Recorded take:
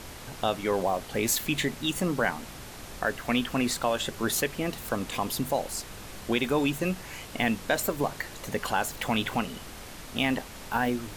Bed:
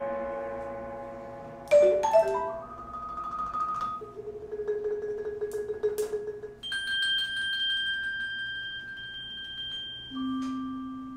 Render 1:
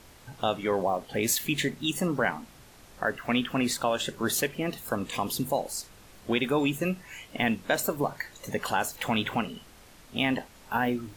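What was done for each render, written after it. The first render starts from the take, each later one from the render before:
noise reduction from a noise print 10 dB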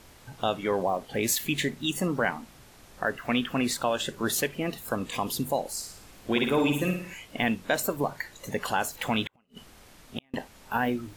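0:05.75–0:07.14: flutter between parallel walls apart 9.6 metres, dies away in 0.59 s
0:09.25–0:10.34: gate with flip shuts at −21 dBFS, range −39 dB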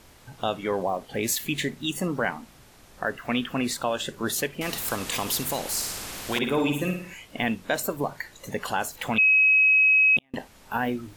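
0:04.61–0:06.39: every bin compressed towards the loudest bin 2 to 1
0:09.18–0:10.17: beep over 2,550 Hz −15 dBFS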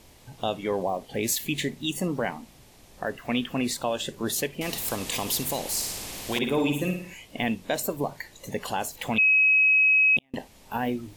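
parametric band 1,400 Hz −8.5 dB 0.65 octaves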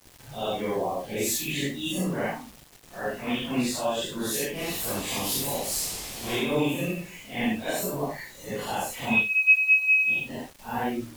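random phases in long frames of 200 ms
bit-depth reduction 8 bits, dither none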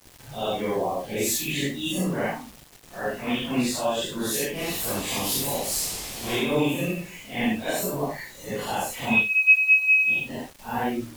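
level +2 dB

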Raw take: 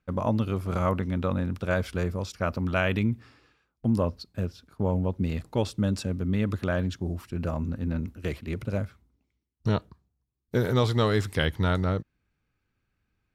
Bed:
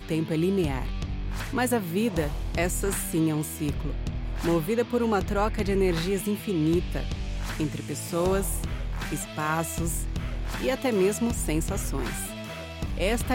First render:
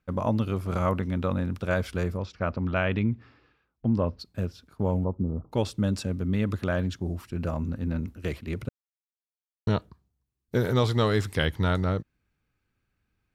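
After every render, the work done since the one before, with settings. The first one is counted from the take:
0:02.17–0:04.19: high-frequency loss of the air 180 metres
0:05.04–0:05.52: Chebyshev low-pass filter 1,300 Hz, order 6
0:08.69–0:09.67: silence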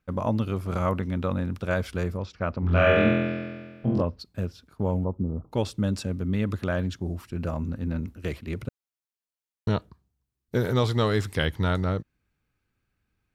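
0:02.60–0:04.02: flutter between parallel walls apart 4 metres, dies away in 1.5 s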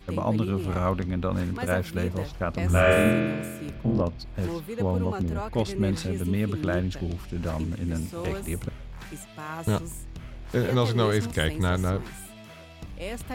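mix in bed −9 dB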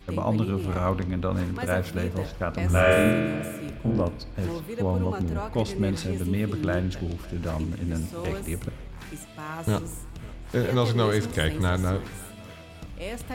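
feedback delay network reverb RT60 0.94 s, high-frequency decay 0.8×, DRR 14.5 dB
feedback echo with a swinging delay time 550 ms, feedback 42%, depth 72 cents, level −22 dB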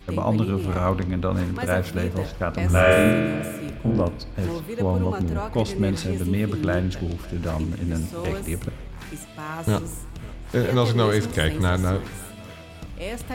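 level +3 dB

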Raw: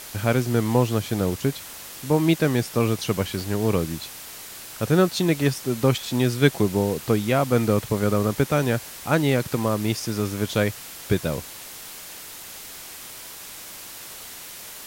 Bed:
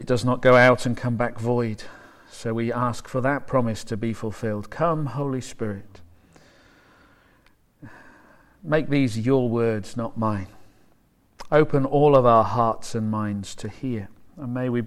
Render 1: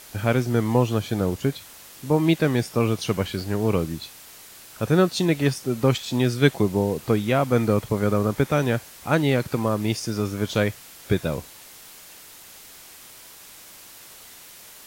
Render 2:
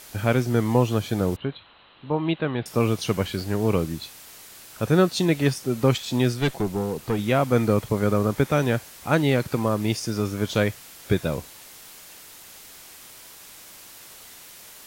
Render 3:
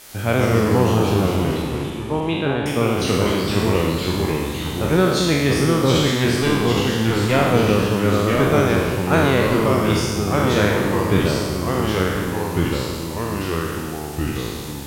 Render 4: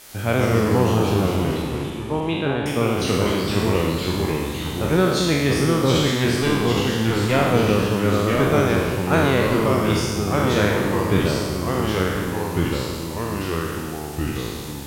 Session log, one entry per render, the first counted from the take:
noise reduction from a noise print 6 dB
0:01.36–0:02.66: Chebyshev low-pass with heavy ripple 4,100 Hz, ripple 6 dB; 0:06.32–0:07.19: tube saturation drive 16 dB, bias 0.45
peak hold with a decay on every bin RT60 1.49 s; delay with pitch and tempo change per echo 92 ms, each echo −2 semitones, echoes 3
level −1.5 dB

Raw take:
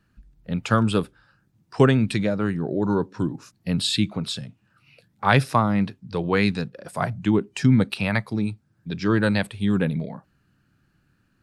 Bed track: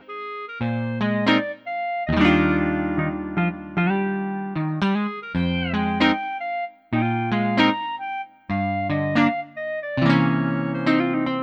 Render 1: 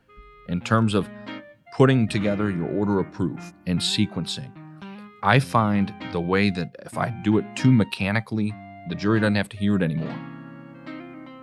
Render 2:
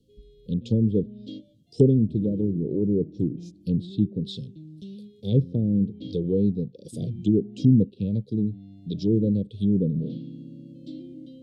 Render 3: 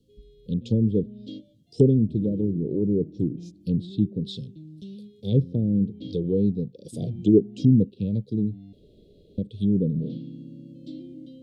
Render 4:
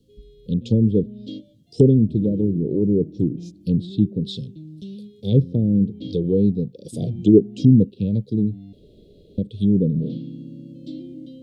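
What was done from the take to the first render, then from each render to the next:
mix in bed track −18 dB
Chebyshev band-stop filter 480–3,400 Hz, order 4; treble cut that deepens with the level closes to 800 Hz, closed at −20 dBFS
0:06.81–0:07.37: parametric band 1,400 Hz → 390 Hz +11.5 dB; 0:08.73–0:09.38: fill with room tone
level +4.5 dB; brickwall limiter −2 dBFS, peak gain reduction 1.5 dB

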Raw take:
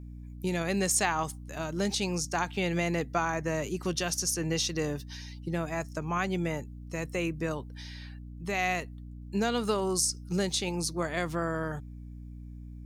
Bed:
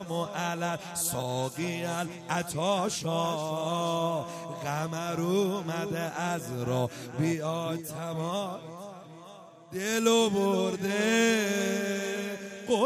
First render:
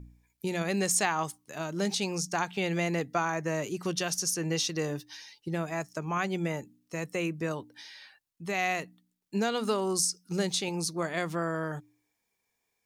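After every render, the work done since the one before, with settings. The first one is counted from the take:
hum removal 60 Hz, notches 5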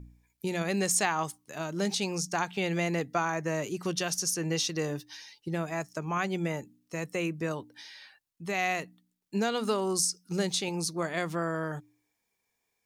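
no processing that can be heard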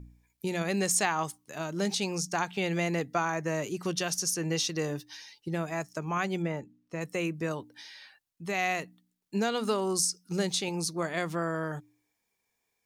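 0:06.42–0:07.01: low-pass filter 2,100 Hz 6 dB per octave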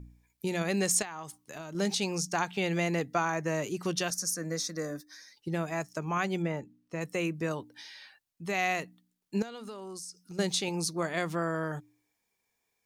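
0:01.02–0:01.75: downward compressor 4 to 1, threshold −38 dBFS
0:04.10–0:05.37: phaser with its sweep stopped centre 580 Hz, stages 8
0:09.42–0:10.39: downward compressor 4 to 1, threshold −42 dBFS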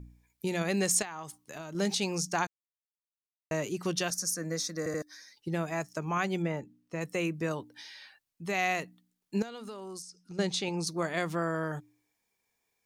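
0:02.47–0:03.51: silence
0:04.78: stutter in place 0.08 s, 3 plays
0:10.02–0:10.87: high-frequency loss of the air 57 metres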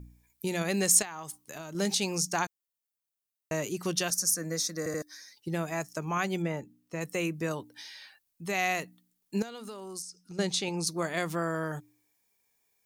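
high-shelf EQ 7,900 Hz +10.5 dB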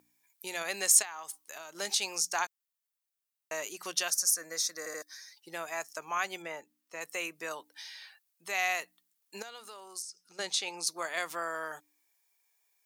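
high-pass filter 740 Hz 12 dB per octave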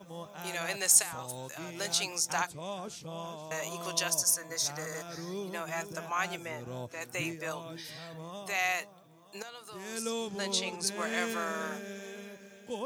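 mix in bed −12 dB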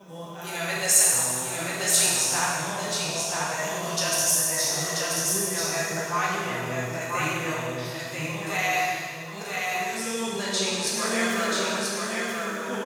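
single-tap delay 984 ms −3.5 dB
dense smooth reverb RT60 1.9 s, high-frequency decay 0.95×, DRR −6 dB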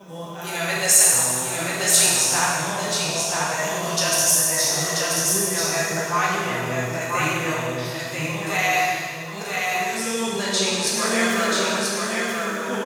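level +4.5 dB
brickwall limiter −2 dBFS, peak gain reduction 1.5 dB

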